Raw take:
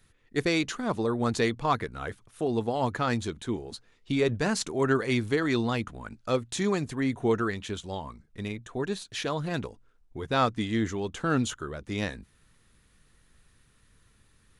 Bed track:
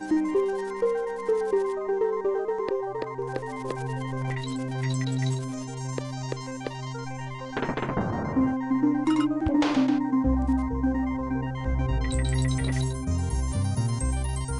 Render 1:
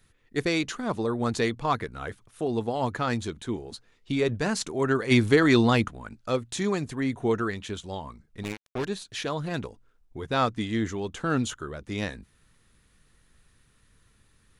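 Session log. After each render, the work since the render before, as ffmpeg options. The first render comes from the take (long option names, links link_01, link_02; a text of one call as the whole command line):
ffmpeg -i in.wav -filter_complex "[0:a]asplit=3[link_01][link_02][link_03];[link_01]afade=type=out:start_time=5.1:duration=0.02[link_04];[link_02]acontrast=88,afade=type=in:start_time=5.1:duration=0.02,afade=type=out:start_time=5.87:duration=0.02[link_05];[link_03]afade=type=in:start_time=5.87:duration=0.02[link_06];[link_04][link_05][link_06]amix=inputs=3:normalize=0,asettb=1/sr,asplit=3[link_07][link_08][link_09];[link_07]atrim=end=8.434[link_10];[link_08]atrim=start=8.43:end=8.85,asetpts=PTS-STARTPTS,afade=type=in:duration=0.004:curve=qsin,afade=type=out:start_time=0.416:duration=0.004:curve=qsin,acrusher=bits=4:mix=0:aa=0.5[link_11];[link_09]atrim=start=8.846[link_12];[link_10][link_11]acrossfade=duration=0.004:curve1=hsin:curve2=qsin[link_13];[link_13][link_12]acrossfade=duration=0.004:curve1=qsin:curve2=hsin" out.wav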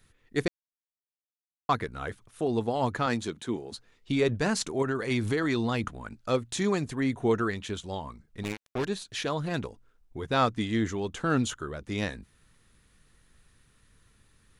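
ffmpeg -i in.wav -filter_complex "[0:a]asettb=1/sr,asplit=3[link_01][link_02][link_03];[link_01]atrim=end=3.064[link_04];[link_02]atrim=start=3.06:end=3.72,asetpts=PTS-STARTPTS,afade=type=in:duration=0.004:curve=qsin,afade=type=out:start_time=0.656:duration=0.004:curve=qsin,highpass=140[link_05];[link_03]atrim=start=3.716[link_06];[link_04][link_05]acrossfade=duration=0.004:curve1=hsin:curve2=qsin[link_07];[link_07][link_06]acrossfade=duration=0.004:curve1=qsin:curve2=hsin,asettb=1/sr,asplit=3[link_08][link_09][link_10];[link_08]atrim=end=4.824[link_11];[link_09]atrim=start=4.82:end=5.84,asetpts=PTS-STARTPTS,afade=type=in:duration=0.004:curve=qsin,afade=type=out:start_time=1.016:duration=0.004:curve=qsin,acompressor=threshold=-26dB:ratio=3:attack=3.2:release=140:knee=1:detection=peak[link_12];[link_10]atrim=start=5.836[link_13];[link_11][link_12]acrossfade=duration=0.004:curve1=hsin:curve2=qsin[link_14];[link_14][link_13]acrossfade=duration=0.004:curve1=qsin:curve2=hsin,asplit=3[link_15][link_16][link_17];[link_15]atrim=end=0.48,asetpts=PTS-STARTPTS,afade=type=out:start_time=0.476:duration=0.004:curve=hsin[link_18];[link_16]atrim=start=0.48:end=1.69,asetpts=PTS-STARTPTS,volume=0[link_19];[link_17]atrim=start=1.69,asetpts=PTS-STARTPTS,afade=type=in:duration=0.004:curve=hsin[link_20];[link_18][link_19][link_20]concat=n=3:v=0:a=1" out.wav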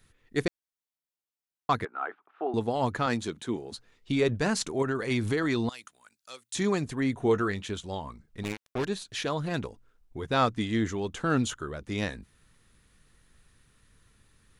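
ffmpeg -i in.wav -filter_complex "[0:a]asettb=1/sr,asplit=3[link_01][link_02][link_03];[link_01]atrim=end=1.854[link_04];[link_02]atrim=start=1.85:end=2.54,asetpts=PTS-STARTPTS,afade=type=in:duration=0.004:curve=qsin,afade=type=out:start_time=0.686:duration=0.004:curve=qsin,highpass=frequency=340:width=0.5412,highpass=frequency=340:width=1.3066,equalizer=frequency=510:width_type=q:width=4:gain=-9,equalizer=frequency=790:width_type=q:width=4:gain=8,equalizer=frequency=1300:width_type=q:width=4:gain=7,equalizer=frequency=2100:width_type=q:width=4:gain=-4,lowpass=frequency=2300:width=0.5412,lowpass=frequency=2300:width=1.3066[link_05];[link_03]atrim=start=2.536[link_06];[link_04][link_05]acrossfade=duration=0.004:curve1=hsin:curve2=qsin[link_07];[link_07][link_06]acrossfade=duration=0.004:curve1=qsin:curve2=hsin,asettb=1/sr,asplit=3[link_08][link_09][link_10];[link_08]atrim=end=5.694[link_11];[link_09]atrim=start=5.69:end=6.55,asetpts=PTS-STARTPTS,afade=type=in:duration=0.004:curve=qsin,afade=type=out:start_time=0.856:duration=0.004:curve=qsin,aderivative[link_12];[link_10]atrim=start=6.546[link_13];[link_11][link_12]acrossfade=duration=0.004:curve1=hsin:curve2=qsin[link_14];[link_14][link_13]acrossfade=duration=0.004:curve1=qsin:curve2=hsin,asettb=1/sr,asplit=3[link_15][link_16][link_17];[link_15]atrim=end=7.214[link_18];[link_16]atrim=start=7.21:end=7.63,asetpts=PTS-STARTPTS,afade=type=in:duration=0.004:curve=qsin,afade=type=out:start_time=0.416:duration=0.004:curve=qsin,asplit=2[link_19][link_20];[link_20]adelay=20,volume=-12dB[link_21];[link_19][link_21]amix=inputs=2:normalize=0,atrim=end_sample=18522[link_22];[link_17]atrim=start=7.626[link_23];[link_18][link_22]acrossfade=duration=0.004:curve1=hsin:curve2=qsin[link_24];[link_24][link_23]acrossfade=duration=0.004:curve1=qsin:curve2=hsin" out.wav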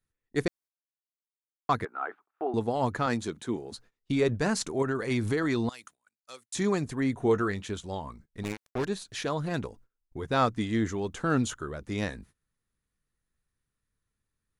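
ffmpeg -i in.wav -af "agate=range=-21dB:threshold=-52dB:ratio=16:detection=peak,equalizer=frequency=3100:width=1.4:gain=-4" out.wav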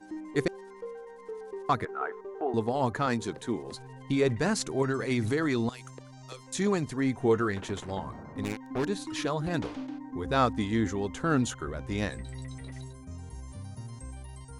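ffmpeg -i in.wav -i bed.wav -filter_complex "[1:a]volume=-15.5dB[link_01];[0:a][link_01]amix=inputs=2:normalize=0" out.wav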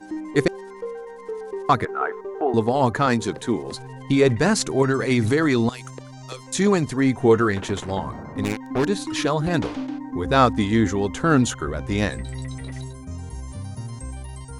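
ffmpeg -i in.wav -af "volume=8.5dB" out.wav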